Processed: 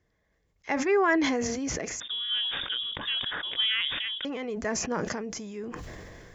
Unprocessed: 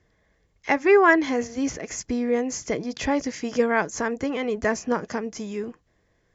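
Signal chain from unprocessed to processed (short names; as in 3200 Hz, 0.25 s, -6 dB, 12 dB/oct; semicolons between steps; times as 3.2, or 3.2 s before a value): 2–4.25 inverted band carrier 3600 Hz; sustainer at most 21 dB/s; gain -8 dB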